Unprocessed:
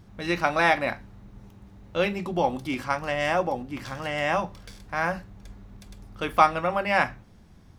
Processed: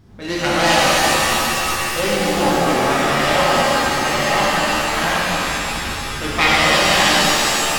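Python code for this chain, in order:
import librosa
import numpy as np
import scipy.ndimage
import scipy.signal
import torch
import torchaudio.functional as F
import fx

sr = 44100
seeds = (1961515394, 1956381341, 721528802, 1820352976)

y = fx.self_delay(x, sr, depth_ms=0.4)
y = fx.rev_shimmer(y, sr, seeds[0], rt60_s=3.3, semitones=7, shimmer_db=-2, drr_db=-8.0)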